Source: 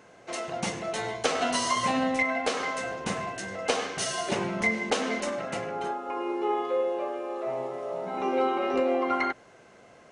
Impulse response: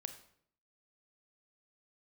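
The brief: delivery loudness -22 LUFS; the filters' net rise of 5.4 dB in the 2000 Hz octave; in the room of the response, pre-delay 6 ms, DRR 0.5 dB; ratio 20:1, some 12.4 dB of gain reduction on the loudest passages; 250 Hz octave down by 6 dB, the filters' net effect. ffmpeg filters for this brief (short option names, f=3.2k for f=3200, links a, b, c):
-filter_complex "[0:a]equalizer=f=250:t=o:g=-8,equalizer=f=2k:t=o:g=6,acompressor=threshold=-29dB:ratio=20,asplit=2[a][b];[1:a]atrim=start_sample=2205,adelay=6[c];[b][c]afir=irnorm=-1:irlink=0,volume=2.5dB[d];[a][d]amix=inputs=2:normalize=0,volume=8.5dB"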